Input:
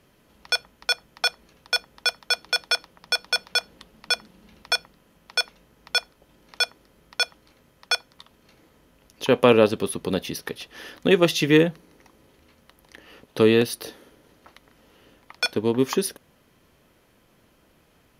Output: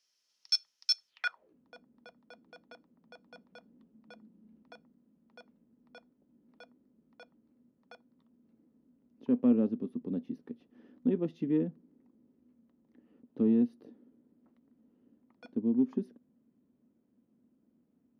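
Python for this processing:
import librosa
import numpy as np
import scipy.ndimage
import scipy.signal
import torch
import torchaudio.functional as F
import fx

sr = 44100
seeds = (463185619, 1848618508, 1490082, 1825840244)

y = fx.filter_sweep_bandpass(x, sr, from_hz=5400.0, to_hz=240.0, start_s=1.07, end_s=1.57, q=5.7)
y = fx.cheby_harmonics(y, sr, harmonics=(5,), levels_db=(-36,), full_scale_db=-14.5)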